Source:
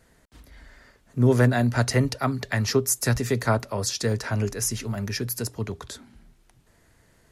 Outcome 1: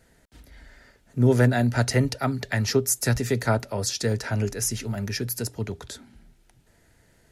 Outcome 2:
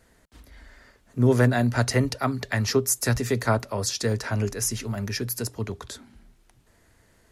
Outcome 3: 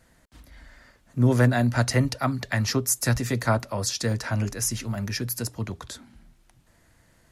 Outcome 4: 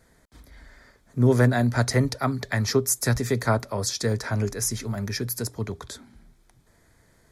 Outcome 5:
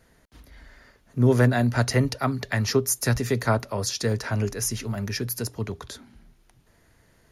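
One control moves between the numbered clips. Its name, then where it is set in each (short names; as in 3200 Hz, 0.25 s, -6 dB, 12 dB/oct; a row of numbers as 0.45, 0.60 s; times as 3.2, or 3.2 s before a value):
notch, frequency: 1100, 150, 420, 2800, 7900 Hz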